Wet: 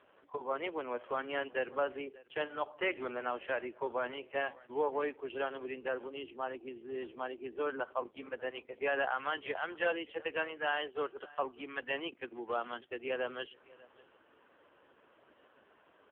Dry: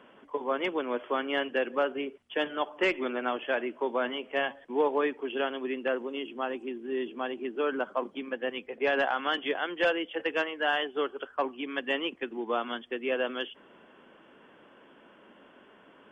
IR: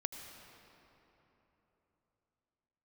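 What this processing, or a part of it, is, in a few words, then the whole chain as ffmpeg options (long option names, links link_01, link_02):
satellite phone: -filter_complex "[0:a]asplit=3[link_01][link_02][link_03];[link_01]afade=type=out:start_time=5.73:duration=0.02[link_04];[link_02]equalizer=frequency=610:width_type=o:width=0.27:gain=-3,afade=type=in:start_time=5.73:duration=0.02,afade=type=out:start_time=6.2:duration=0.02[link_05];[link_03]afade=type=in:start_time=6.2:duration=0.02[link_06];[link_04][link_05][link_06]amix=inputs=3:normalize=0,highpass=350,lowpass=3200,aecho=1:1:594:0.075,volume=-4dB" -ar 8000 -c:a libopencore_amrnb -b:a 5900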